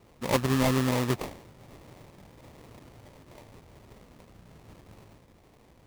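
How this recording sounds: aliases and images of a low sample rate 1500 Hz, jitter 20%

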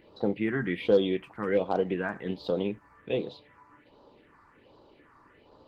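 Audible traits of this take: phasing stages 4, 1.3 Hz, lowest notch 510–2100 Hz; Opus

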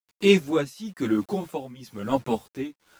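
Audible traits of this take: a quantiser's noise floor 8-bit, dither none; tremolo triangle 1 Hz, depth 90%; a shimmering, thickened sound

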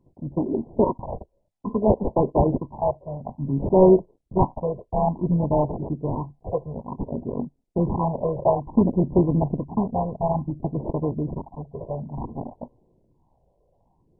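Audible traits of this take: aliases and images of a low sample rate 1500 Hz, jitter 0%; phasing stages 8, 0.57 Hz, lowest notch 260–1700 Hz; MP2

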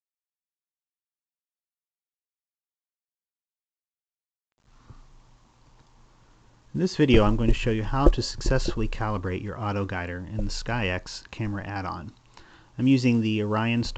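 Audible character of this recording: a quantiser's noise floor 10-bit, dither none; µ-law

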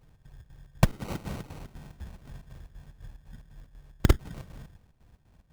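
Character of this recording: a quantiser's noise floor 12-bit, dither none; chopped level 4 Hz, depth 65%, duty 65%; aliases and images of a low sample rate 1700 Hz, jitter 0%

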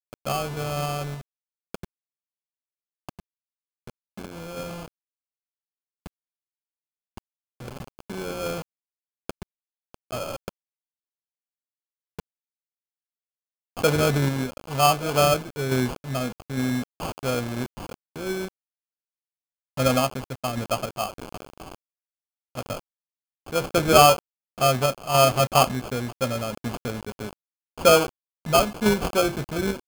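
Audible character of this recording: a quantiser's noise floor 6-bit, dither none; random-step tremolo; aliases and images of a low sample rate 1900 Hz, jitter 0%

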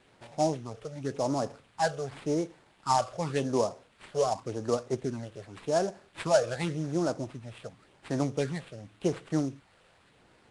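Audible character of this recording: a quantiser's noise floor 10-bit, dither triangular; phasing stages 8, 0.89 Hz, lowest notch 260–4900 Hz; aliases and images of a low sample rate 6100 Hz, jitter 20%; Nellymoser

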